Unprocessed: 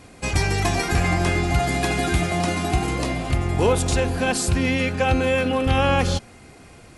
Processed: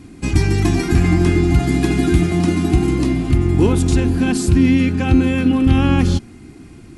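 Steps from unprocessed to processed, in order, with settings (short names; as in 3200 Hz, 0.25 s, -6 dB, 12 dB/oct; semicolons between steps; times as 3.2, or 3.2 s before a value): resonant low shelf 410 Hz +8 dB, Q 3; gain -1.5 dB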